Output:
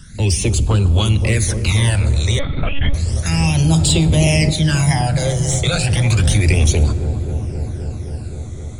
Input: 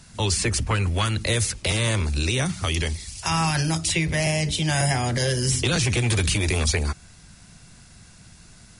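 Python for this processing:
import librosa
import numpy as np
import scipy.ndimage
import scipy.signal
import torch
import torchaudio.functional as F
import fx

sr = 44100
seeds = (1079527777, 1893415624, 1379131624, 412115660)

p1 = fx.low_shelf(x, sr, hz=90.0, db=6.5)
p2 = 10.0 ** (-22.5 / 20.0) * np.tanh(p1 / 10.0 ** (-22.5 / 20.0))
p3 = p1 + F.gain(torch.from_numpy(p2), -8.0).numpy()
p4 = fx.phaser_stages(p3, sr, stages=12, low_hz=270.0, high_hz=2000.0, hz=0.32, feedback_pct=25)
p5 = p4 + fx.echo_wet_lowpass(p4, sr, ms=262, feedback_pct=83, hz=710.0, wet_db=-8.5, dry=0)
p6 = fx.rev_plate(p5, sr, seeds[0], rt60_s=2.6, hf_ratio=0.5, predelay_ms=0, drr_db=16.0)
p7 = fx.lpc_monotone(p6, sr, seeds[1], pitch_hz=280.0, order=16, at=(2.39, 2.94))
p8 = fx.env_flatten(p7, sr, amount_pct=50, at=(3.69, 4.49), fade=0.02)
y = F.gain(torch.from_numpy(p8), 4.0).numpy()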